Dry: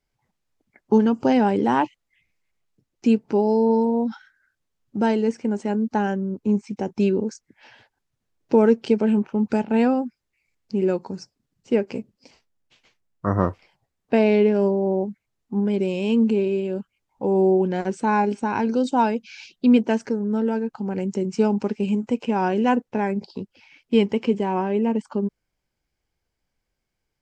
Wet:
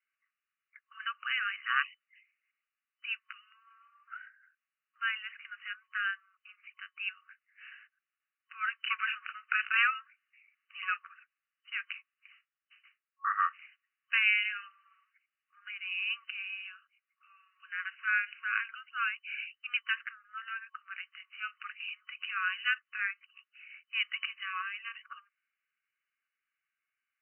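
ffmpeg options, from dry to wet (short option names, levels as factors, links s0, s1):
-filter_complex "[0:a]asettb=1/sr,asplit=3[s0][s1][s2];[s0]atrim=end=8.874[s3];[s1]atrim=start=8.87:end=11.14,asetpts=PTS-STARTPTS,afade=t=in:d=0.004:c=qsin,afade=t=out:st=2.266:d=0.004:c=qsin,acontrast=82[s4];[s2]atrim=start=11.136[s5];[s3][s4]acrossfade=d=0.004:c1=hsin:c2=qsin[s6];[s6][s5]acrossfade=d=0.004:c1=qsin:c2=hsin,asettb=1/sr,asplit=3[s7][s8][s9];[s7]atrim=end=13.294[s10];[s8]atrim=start=13.29:end=15.71,asetpts=PTS-STARTPTS,afade=t=in:d=0.004:c=qsin,afade=t=out:st=2.416:d=0.004:c=qsin,highshelf=f=2800:g=7.5[s11];[s9]atrim=start=15.706[s12];[s10][s11]acrossfade=d=0.004:c1=hsin:c2=qsin[s13];[s13][s12]acrossfade=d=0.004:c1=qsin:c2=hsin,afftfilt=real='re*between(b*sr/4096,1100,3000)':imag='im*between(b*sr/4096,1100,3000)':win_size=4096:overlap=0.75,adynamicequalizer=threshold=0.00398:dfrequency=1500:dqfactor=0.7:tfrequency=1500:tqfactor=0.7:attack=5:release=100:ratio=0.375:range=2.5:mode=boostabove:tftype=highshelf"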